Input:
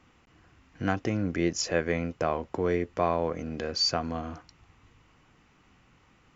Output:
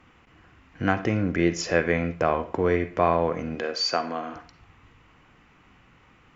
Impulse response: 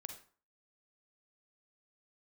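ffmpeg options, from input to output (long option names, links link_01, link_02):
-filter_complex "[0:a]asettb=1/sr,asplit=3[link_01][link_02][link_03];[link_01]atrim=end=3.554[link_04];[link_02]atrim=start=3.55:end=4.36,asetpts=PTS-STARTPTS,afade=type=in:duration=0.004:curve=qsin,afade=type=out:start_time=0.806:duration=0.004:curve=qsin,highpass=300[link_05];[link_03]atrim=start=4.356[link_06];[link_04][link_05]acrossfade=duration=0.004:curve1=hsin:curve2=qsin[link_07];[link_07][link_06]acrossfade=duration=0.004:curve1=qsin:curve2=hsin,asplit=2[link_08][link_09];[link_09]tiltshelf=frequency=1300:gain=-5[link_10];[1:a]atrim=start_sample=2205,lowpass=2800[link_11];[link_10][link_11]afir=irnorm=-1:irlink=0,volume=5.5dB[link_12];[link_08][link_12]amix=inputs=2:normalize=0"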